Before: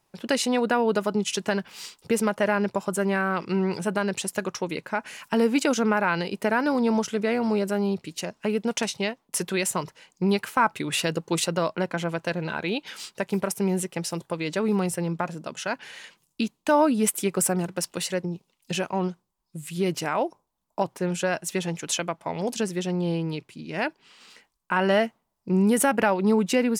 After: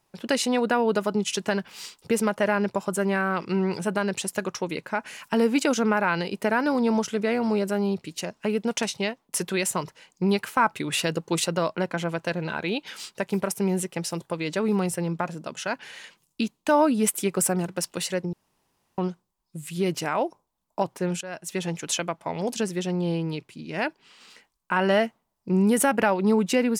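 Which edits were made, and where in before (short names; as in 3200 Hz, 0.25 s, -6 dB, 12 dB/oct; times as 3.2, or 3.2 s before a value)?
18.33–18.98 room tone
21.21–21.67 fade in, from -17.5 dB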